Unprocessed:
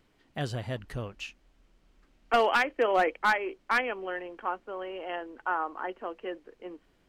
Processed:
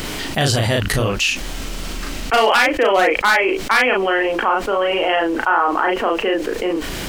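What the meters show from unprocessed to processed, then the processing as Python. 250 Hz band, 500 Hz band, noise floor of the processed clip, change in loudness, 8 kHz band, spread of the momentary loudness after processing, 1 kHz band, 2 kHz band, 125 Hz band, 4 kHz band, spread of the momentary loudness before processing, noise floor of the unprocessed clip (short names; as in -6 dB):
+17.0 dB, +13.5 dB, -27 dBFS, +13.0 dB, +24.5 dB, 10 LU, +12.0 dB, +13.5 dB, +16.0 dB, +18.5 dB, 17 LU, -67 dBFS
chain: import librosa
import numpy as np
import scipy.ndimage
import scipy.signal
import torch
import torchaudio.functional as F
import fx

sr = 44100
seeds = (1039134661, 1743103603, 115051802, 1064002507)

y = fx.high_shelf(x, sr, hz=3200.0, db=11.5)
y = fx.doubler(y, sr, ms=36.0, db=-2.5)
y = fx.env_flatten(y, sr, amount_pct=70)
y = y * librosa.db_to_amplitude(5.0)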